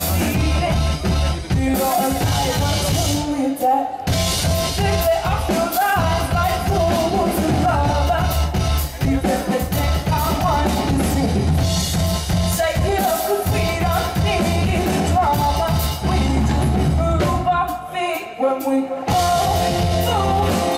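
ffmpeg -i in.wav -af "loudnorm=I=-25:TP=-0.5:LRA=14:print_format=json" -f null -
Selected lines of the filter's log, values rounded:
"input_i" : "-18.9",
"input_tp" : "-6.7",
"input_lra" : "0.8",
"input_thresh" : "-28.9",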